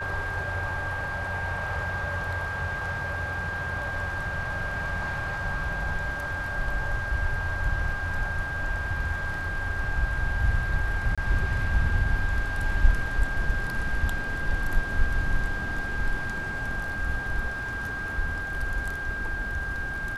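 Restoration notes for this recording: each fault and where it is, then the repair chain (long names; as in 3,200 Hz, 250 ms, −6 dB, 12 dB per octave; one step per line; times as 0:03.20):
whistle 1,600 Hz −31 dBFS
0:11.15–0:11.18: drop-out 26 ms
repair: notch filter 1,600 Hz, Q 30
repair the gap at 0:11.15, 26 ms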